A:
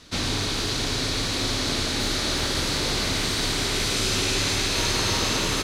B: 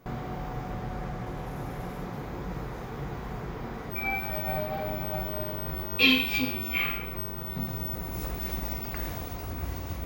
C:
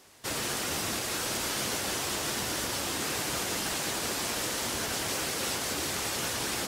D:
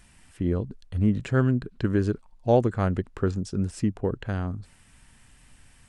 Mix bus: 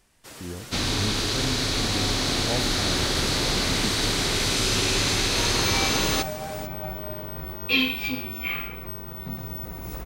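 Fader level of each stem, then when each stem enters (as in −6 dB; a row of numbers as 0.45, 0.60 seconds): +0.5, −1.0, −10.5, −11.0 decibels; 0.60, 1.70, 0.00, 0.00 seconds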